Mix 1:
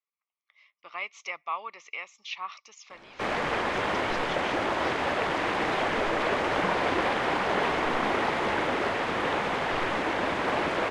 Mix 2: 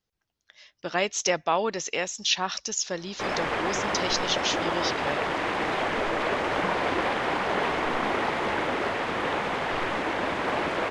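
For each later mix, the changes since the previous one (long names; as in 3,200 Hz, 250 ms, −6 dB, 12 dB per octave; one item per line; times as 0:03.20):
speech: remove pair of resonant band-passes 1,600 Hz, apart 0.91 octaves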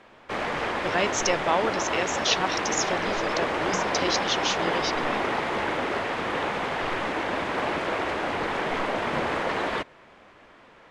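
background: entry −2.90 s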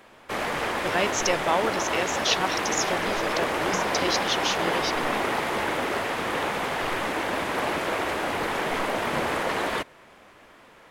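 background: remove high-frequency loss of the air 87 metres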